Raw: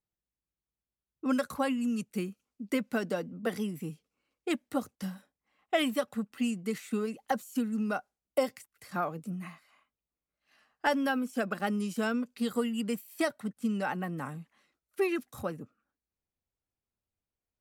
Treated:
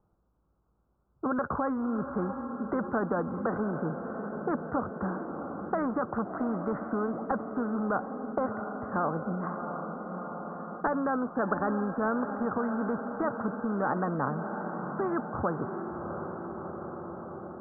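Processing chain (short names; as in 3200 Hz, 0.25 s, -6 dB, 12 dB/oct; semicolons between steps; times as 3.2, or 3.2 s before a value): steep low-pass 1400 Hz 72 dB/oct; 6.11–6.73 dynamic EQ 890 Hz, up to +7 dB, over -49 dBFS, Q 0.76; limiter -26 dBFS, peak gain reduction 10.5 dB; on a send: diffused feedback echo 0.693 s, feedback 58%, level -15 dB; on the sum: spectral compressor 2:1; gain +8.5 dB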